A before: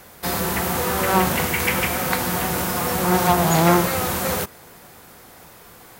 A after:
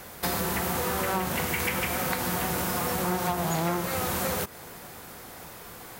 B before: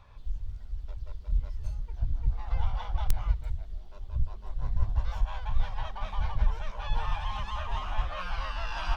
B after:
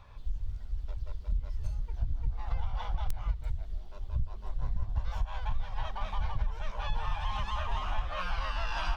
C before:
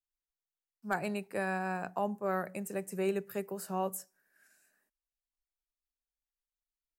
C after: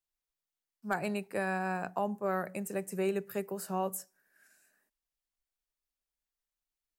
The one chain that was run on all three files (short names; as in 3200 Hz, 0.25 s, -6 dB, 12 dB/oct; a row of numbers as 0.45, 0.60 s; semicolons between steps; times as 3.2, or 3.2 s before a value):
compressor 6:1, threshold -27 dBFS; gain +1.5 dB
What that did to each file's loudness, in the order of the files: -7.5, -2.0, +1.0 LU